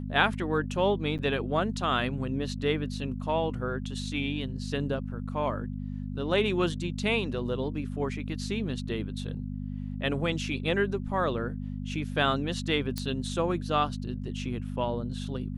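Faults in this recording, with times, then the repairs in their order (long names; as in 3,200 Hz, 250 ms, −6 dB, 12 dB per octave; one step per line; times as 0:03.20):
mains hum 50 Hz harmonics 5 −35 dBFS
0:01.18–0:01.19: drop-out 8.6 ms
0:12.98: click −17 dBFS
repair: click removal
hum removal 50 Hz, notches 5
repair the gap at 0:01.18, 8.6 ms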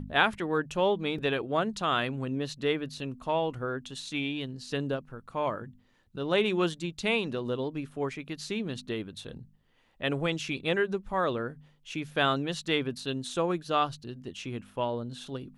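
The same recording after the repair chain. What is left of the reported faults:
none of them is left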